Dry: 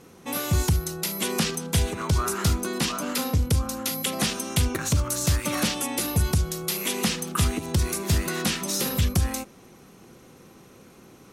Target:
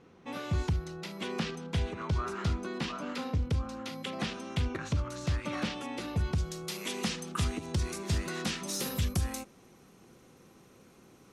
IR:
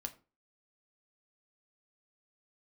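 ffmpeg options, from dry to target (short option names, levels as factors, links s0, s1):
-af "asetnsamples=n=441:p=0,asendcmd='6.38 lowpass f 7200;8.67 lowpass f 12000',lowpass=3500,volume=0.422"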